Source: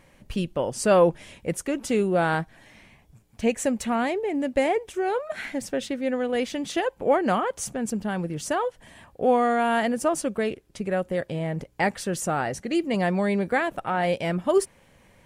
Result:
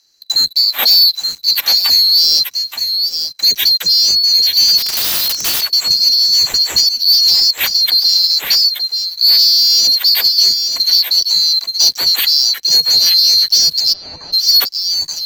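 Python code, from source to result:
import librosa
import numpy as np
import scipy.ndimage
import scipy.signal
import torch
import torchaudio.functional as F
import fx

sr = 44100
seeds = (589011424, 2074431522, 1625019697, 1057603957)

p1 = fx.band_swap(x, sr, width_hz=4000)
p2 = fx.dispersion(p1, sr, late='lows', ms=48.0, hz=330.0)
p3 = fx.leveller(p2, sr, passes=3)
p4 = fx.level_steps(p3, sr, step_db=22)
p5 = p3 + (p4 * librosa.db_to_amplitude(1.5))
p6 = fx.low_shelf(p5, sr, hz=490.0, db=-11.5, at=(12.15, 12.65))
p7 = p6 + fx.echo_multitap(p6, sr, ms=(875, 887), db=(-8.5, -11.5), dry=0)
p8 = fx.overflow_wrap(p7, sr, gain_db=11.0, at=(4.77, 5.61), fade=0.02)
y = fx.lowpass(p8, sr, hz=1300.0, slope=12, at=(13.92, 14.32), fade=0.02)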